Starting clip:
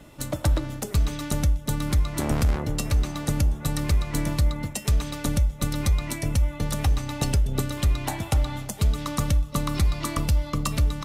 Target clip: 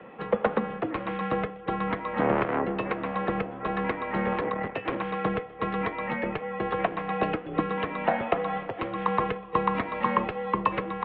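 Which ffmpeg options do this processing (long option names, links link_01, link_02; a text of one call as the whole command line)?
ffmpeg -i in.wav -filter_complex "[0:a]asettb=1/sr,asplit=3[link_01][link_02][link_03];[link_01]atrim=end=4.324[link_04];[link_02]atrim=start=4.32:end=4.97,asetpts=PTS-STARTPTS,afade=type=in:duration=0.004:curve=qsin,afade=type=out:start_time=0.646:duration=0.004:curve=qsin,aeval=exprs='0.211*(cos(1*acos(clip(val(0)/0.211,-1,1)))-cos(1*PI/2))+0.0188*(cos(8*acos(clip(val(0)/0.211,-1,1)))-cos(8*PI/2))':channel_layout=same[link_05];[link_03]atrim=start=4.966[link_06];[link_04][link_05]acrossfade=duration=0.004:curve1=hsin:curve2=qsin[link_07];[link_07][link_06]acrossfade=duration=0.004:curve1=qsin:curve2=hsin,highpass=frequency=230:width_type=q:width=0.5412,highpass=frequency=230:width_type=q:width=1.307,lowpass=frequency=3200:width_type=q:width=0.5176,lowpass=frequency=3200:width_type=q:width=0.7071,lowpass=frequency=3200:width_type=q:width=1.932,afreqshift=-100,acrossover=split=250 2300:gain=0.224 1 0.126[link_08][link_09][link_10];[link_08][link_09][link_10]amix=inputs=3:normalize=0,volume=8.5dB" out.wav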